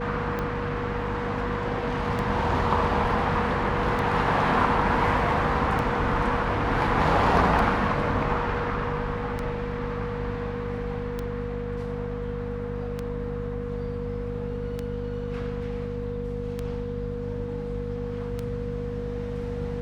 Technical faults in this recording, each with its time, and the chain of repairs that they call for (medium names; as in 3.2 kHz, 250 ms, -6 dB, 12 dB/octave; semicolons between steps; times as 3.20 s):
hum 50 Hz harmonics 5 -33 dBFS
tick 33 1/3 rpm -17 dBFS
whine 480 Hz -32 dBFS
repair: de-click; de-hum 50 Hz, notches 5; band-stop 480 Hz, Q 30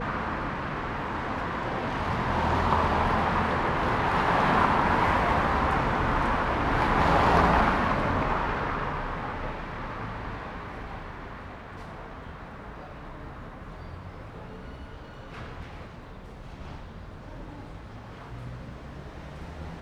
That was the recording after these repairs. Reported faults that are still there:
nothing left